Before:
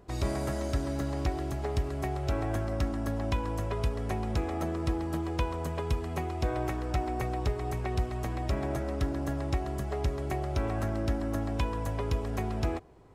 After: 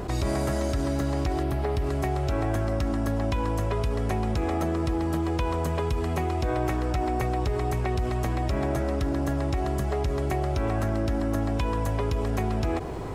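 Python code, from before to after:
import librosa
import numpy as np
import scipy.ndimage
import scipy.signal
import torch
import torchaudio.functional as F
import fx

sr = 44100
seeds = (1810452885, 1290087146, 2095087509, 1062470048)

y = fx.peak_eq(x, sr, hz=6900.0, db=fx.line((1.42, -15.0), (1.85, -4.5)), octaves=0.68, at=(1.42, 1.85), fade=0.02)
y = fx.env_flatten(y, sr, amount_pct=70)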